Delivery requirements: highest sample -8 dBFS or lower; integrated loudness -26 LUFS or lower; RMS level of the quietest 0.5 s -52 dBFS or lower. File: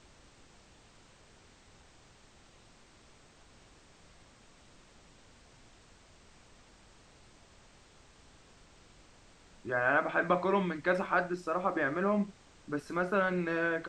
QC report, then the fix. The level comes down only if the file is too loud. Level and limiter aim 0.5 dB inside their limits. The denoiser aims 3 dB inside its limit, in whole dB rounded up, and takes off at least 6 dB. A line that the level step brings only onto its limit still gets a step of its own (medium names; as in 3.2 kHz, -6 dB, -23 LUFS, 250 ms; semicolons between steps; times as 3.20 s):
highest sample -14.5 dBFS: pass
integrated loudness -31.0 LUFS: pass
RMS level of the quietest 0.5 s -60 dBFS: pass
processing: none needed